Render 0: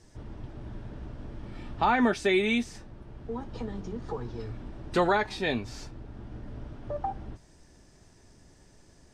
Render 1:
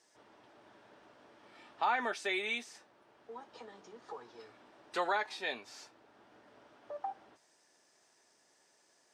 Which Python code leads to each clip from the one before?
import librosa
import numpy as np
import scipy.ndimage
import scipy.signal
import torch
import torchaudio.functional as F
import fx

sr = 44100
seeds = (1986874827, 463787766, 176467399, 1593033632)

y = scipy.signal.sosfilt(scipy.signal.butter(2, 610.0, 'highpass', fs=sr, output='sos'), x)
y = y * 10.0 ** (-5.5 / 20.0)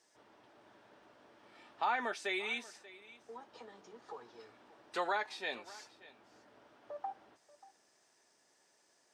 y = x + 10.0 ** (-19.0 / 20.0) * np.pad(x, (int(585 * sr / 1000.0), 0))[:len(x)]
y = y * 10.0 ** (-2.0 / 20.0)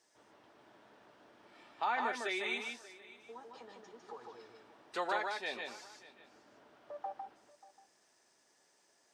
y = x + 10.0 ** (-4.0 / 20.0) * np.pad(x, (int(153 * sr / 1000.0), 0))[:len(x)]
y = y * 10.0 ** (-1.0 / 20.0)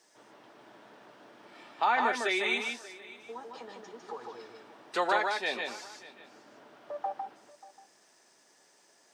y = scipy.signal.sosfilt(scipy.signal.butter(4, 120.0, 'highpass', fs=sr, output='sos'), x)
y = y * 10.0 ** (7.5 / 20.0)